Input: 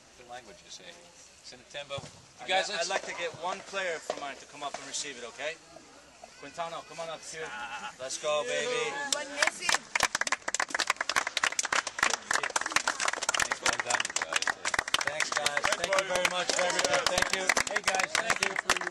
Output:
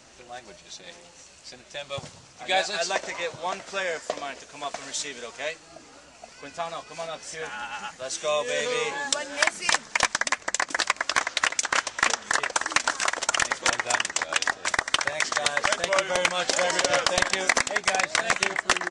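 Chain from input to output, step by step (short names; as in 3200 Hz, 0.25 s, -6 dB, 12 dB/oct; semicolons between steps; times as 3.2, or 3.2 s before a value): downsampling 22050 Hz; gain +4 dB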